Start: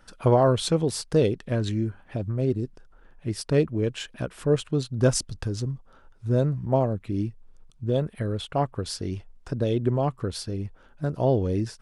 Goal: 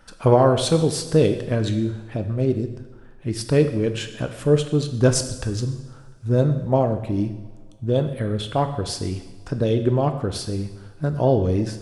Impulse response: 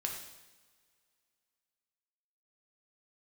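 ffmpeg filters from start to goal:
-filter_complex "[0:a]asplit=2[a][b];[1:a]atrim=start_sample=2205,asetrate=41013,aresample=44100[c];[b][c]afir=irnorm=-1:irlink=0,volume=0dB[d];[a][d]amix=inputs=2:normalize=0,volume=-2dB"

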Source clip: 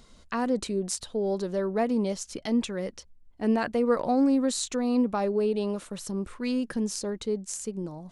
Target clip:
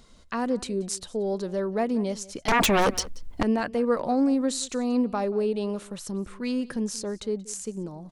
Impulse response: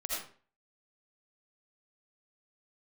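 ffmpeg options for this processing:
-filter_complex "[0:a]asettb=1/sr,asplit=3[a][b][c];[a]atrim=end=2.484[d];[b]atrim=start=2.48:end=3.43,asetpts=PTS-STARTPTS,afade=t=in:d=0.004:c=qsin,afade=t=out:st=0.946:d=0.004:c=qsin,aeval=exprs='0.141*sin(PI/2*5.62*val(0)/0.141)':c=same[e];[c]atrim=start=3.426[f];[d][e]acrossfade=d=0.004:c1=hsin:c2=qsin[g];[g][f]acrossfade=d=0.004:c1=qsin:c2=hsin,asplit=2[h][i];[i]adelay=180.8,volume=-20dB,highshelf=f=4k:g=-4.07[j];[h][j]amix=inputs=2:normalize=0"

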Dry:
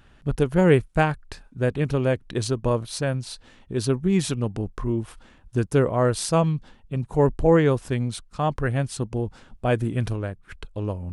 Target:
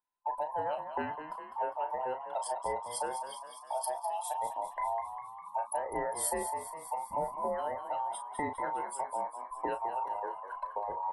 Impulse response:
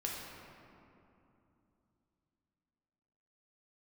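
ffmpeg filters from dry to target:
-filter_complex "[0:a]afftfilt=real='real(if(between(b,1,1008),(2*floor((b-1)/48)+1)*48-b,b),0)':imag='imag(if(between(b,1,1008),(2*floor((b-1)/48)+1)*48-b,b),0)*if(between(b,1,1008),-1,1)':win_size=2048:overlap=0.75,agate=range=-14dB:threshold=-47dB:ratio=16:detection=peak,afftdn=nr=27:nf=-32,lowshelf=f=72:g=-6,acompressor=threshold=-33dB:ratio=8,aexciter=amount=12.6:drive=1.7:freq=8.6k,asplit=2[a][b];[b]adelay=35,volume=-9dB[c];[a][c]amix=inputs=2:normalize=0,asplit=2[d][e];[e]asplit=7[f][g][h][i][j][k][l];[f]adelay=202,afreqshift=52,volume=-9.5dB[m];[g]adelay=404,afreqshift=104,volume=-14.2dB[n];[h]adelay=606,afreqshift=156,volume=-19dB[o];[i]adelay=808,afreqshift=208,volume=-23.7dB[p];[j]adelay=1010,afreqshift=260,volume=-28.4dB[q];[k]adelay=1212,afreqshift=312,volume=-33.2dB[r];[l]adelay=1414,afreqshift=364,volume=-37.9dB[s];[m][n][o][p][q][r][s]amix=inputs=7:normalize=0[t];[d][t]amix=inputs=2:normalize=0,adynamicequalizer=threshold=0.00282:dfrequency=2700:dqfactor=0.7:tfrequency=2700:tqfactor=0.7:attack=5:release=100:ratio=0.375:range=3:mode=cutabove:tftype=highshelf"

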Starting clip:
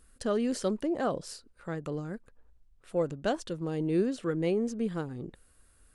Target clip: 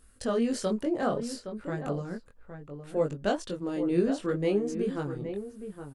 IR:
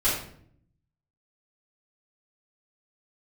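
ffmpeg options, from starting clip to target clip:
-filter_complex "[0:a]flanger=delay=19.5:depth=3.3:speed=0.64,asplit=2[a][b];[b]adelay=816.3,volume=-9dB,highshelf=f=4k:g=-18.4[c];[a][c]amix=inputs=2:normalize=0,volume=4.5dB"

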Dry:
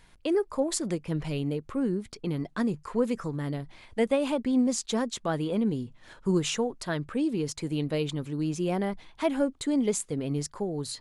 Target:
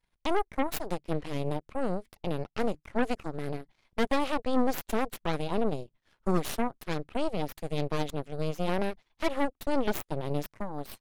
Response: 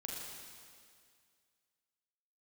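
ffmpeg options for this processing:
-af "aeval=exprs='0.224*(cos(1*acos(clip(val(0)/0.224,-1,1)))-cos(1*PI/2))+0.00178*(cos(3*acos(clip(val(0)/0.224,-1,1)))-cos(3*PI/2))+0.0355*(cos(4*acos(clip(val(0)/0.224,-1,1)))-cos(4*PI/2))+0.0355*(cos(7*acos(clip(val(0)/0.224,-1,1)))-cos(7*PI/2))+0.0398*(cos(8*acos(clip(val(0)/0.224,-1,1)))-cos(8*PI/2))':c=same,equalizer=f=7.7k:w=1.8:g=-4,volume=-4dB"

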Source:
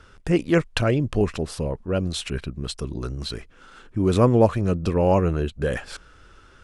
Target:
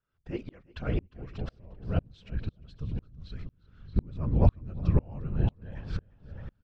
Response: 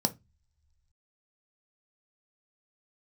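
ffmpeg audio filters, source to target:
-filter_complex "[0:a]bass=f=250:g=-1,treble=f=4k:g=-4,asplit=2[a][b];[b]adelay=623,lowpass=f=1.8k:p=1,volume=-14dB,asplit=2[c][d];[d]adelay=623,lowpass=f=1.8k:p=1,volume=0.28,asplit=2[e][f];[f]adelay=623,lowpass=f=1.8k:p=1,volume=0.28[g];[c][e][g]amix=inputs=3:normalize=0[h];[a][h]amix=inputs=2:normalize=0,afftfilt=real='hypot(re,im)*cos(2*PI*random(0))':imag='hypot(re,im)*sin(2*PI*random(1))':win_size=512:overlap=0.75,asubboost=boost=8:cutoff=150,lowpass=f=5.4k:w=0.5412,lowpass=f=5.4k:w=1.3066,asplit=2[i][j];[j]aecho=0:1:353|706|1059|1412:0.188|0.081|0.0348|0.015[k];[i][k]amix=inputs=2:normalize=0,aeval=exprs='val(0)*pow(10,-33*if(lt(mod(-2*n/s,1),2*abs(-2)/1000),1-mod(-2*n/s,1)/(2*abs(-2)/1000),(mod(-2*n/s,1)-2*abs(-2)/1000)/(1-2*abs(-2)/1000))/20)':c=same"

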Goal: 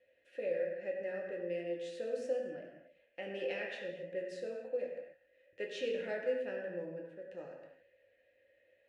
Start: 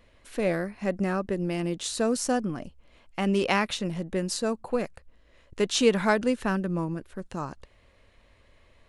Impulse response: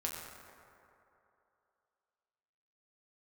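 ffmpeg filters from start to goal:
-filter_complex "[0:a]asplit=3[a][b][c];[a]bandpass=f=530:t=q:w=8,volume=0dB[d];[b]bandpass=f=1.84k:t=q:w=8,volume=-6dB[e];[c]bandpass=f=2.48k:t=q:w=8,volume=-9dB[f];[d][e][f]amix=inputs=3:normalize=0,acrossover=split=390|3000[g][h][i];[h]acompressor=threshold=-38dB:ratio=6[j];[g][j][i]amix=inputs=3:normalize=0[k];[1:a]atrim=start_sample=2205,afade=t=out:st=0.43:d=0.01,atrim=end_sample=19404,asetrate=57330,aresample=44100[l];[k][l]afir=irnorm=-1:irlink=0,volume=1.5dB"

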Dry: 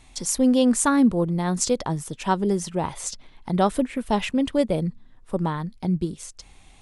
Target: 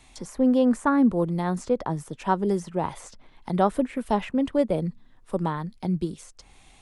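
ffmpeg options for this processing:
-filter_complex "[0:a]lowshelf=f=210:g=-4.5,acrossover=split=160|1900[a][b][c];[c]acompressor=threshold=-46dB:ratio=6[d];[a][b][d]amix=inputs=3:normalize=0"

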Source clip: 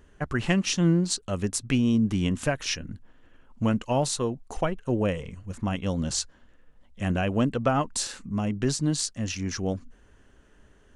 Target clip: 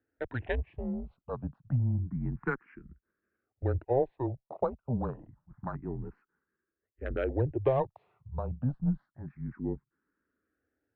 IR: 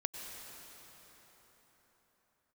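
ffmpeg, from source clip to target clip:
-filter_complex "[0:a]highpass=f=230:t=q:w=0.5412,highpass=f=230:t=q:w=1.307,lowpass=f=2.1k:t=q:w=0.5176,lowpass=f=2.1k:t=q:w=0.7071,lowpass=f=2.1k:t=q:w=1.932,afreqshift=-130,afwtdn=0.0178,asplit=2[a][b];[b]afreqshift=0.28[c];[a][c]amix=inputs=2:normalize=1"

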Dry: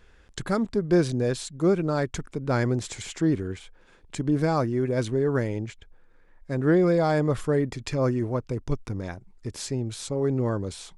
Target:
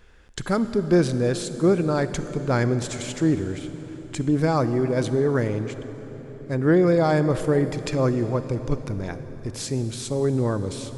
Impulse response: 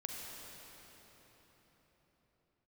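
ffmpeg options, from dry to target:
-filter_complex "[0:a]asplit=2[a][b];[1:a]atrim=start_sample=2205,highshelf=f=9.6k:g=6.5[c];[b][c]afir=irnorm=-1:irlink=0,volume=-6dB[d];[a][d]amix=inputs=2:normalize=0"

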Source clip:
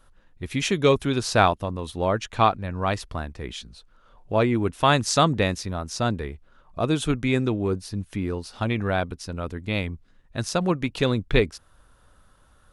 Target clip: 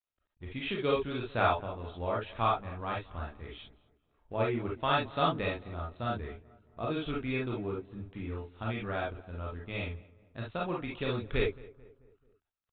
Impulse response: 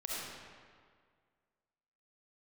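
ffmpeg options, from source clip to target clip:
-filter_complex "[0:a]aresample=8000,aeval=exprs='sgn(val(0))*max(abs(val(0))-0.00335,0)':c=same,aresample=44100,asplit=2[a][b];[b]adelay=219,lowpass=f=1.5k:p=1,volume=-20dB,asplit=2[c][d];[d]adelay=219,lowpass=f=1.5k:p=1,volume=0.51,asplit=2[e][f];[f]adelay=219,lowpass=f=1.5k:p=1,volume=0.51,asplit=2[g][h];[h]adelay=219,lowpass=f=1.5k:p=1,volume=0.51[i];[a][c][e][g][i]amix=inputs=5:normalize=0[j];[1:a]atrim=start_sample=2205,atrim=end_sample=6615,asetrate=88200,aresample=44100[k];[j][k]afir=irnorm=-1:irlink=0,volume=-3dB"

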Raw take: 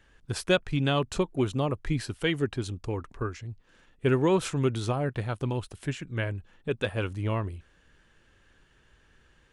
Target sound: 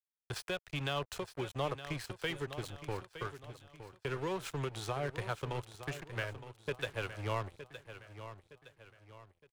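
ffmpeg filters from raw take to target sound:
-filter_complex "[0:a]acrossover=split=240|4900[a][b][c];[c]asoftclip=type=tanh:threshold=-39dB[d];[a][b][d]amix=inputs=3:normalize=0,acrossover=split=110|250[e][f][g];[e]acompressor=threshold=-49dB:ratio=4[h];[f]acompressor=threshold=-31dB:ratio=4[i];[g]acompressor=threshold=-26dB:ratio=4[j];[h][i][j]amix=inputs=3:normalize=0,aeval=exprs='sgn(val(0))*max(abs(val(0))-0.00944,0)':c=same,alimiter=limit=-24dB:level=0:latency=1:release=461,equalizer=f=240:t=o:w=1.1:g=-14.5,aecho=1:1:915|1830|2745|3660:0.251|0.103|0.0422|0.0173,volume=3dB"

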